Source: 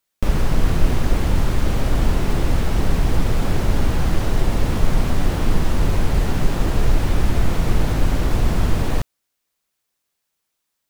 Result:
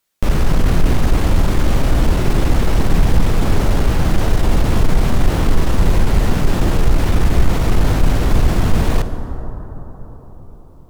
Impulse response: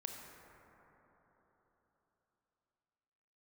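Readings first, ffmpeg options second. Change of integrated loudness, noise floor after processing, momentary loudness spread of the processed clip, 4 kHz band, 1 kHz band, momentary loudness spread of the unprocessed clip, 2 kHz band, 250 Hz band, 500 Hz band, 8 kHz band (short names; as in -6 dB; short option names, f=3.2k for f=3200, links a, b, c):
+4.0 dB, -38 dBFS, 5 LU, +3.5 dB, +4.5 dB, 1 LU, +4.0 dB, +4.5 dB, +4.5 dB, +3.5 dB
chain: -filter_complex "[0:a]acontrast=89,asplit=2[a][b];[1:a]atrim=start_sample=2205,asetrate=34398,aresample=44100[c];[b][c]afir=irnorm=-1:irlink=0,volume=0.5dB[d];[a][d]amix=inputs=2:normalize=0,volume=-7dB"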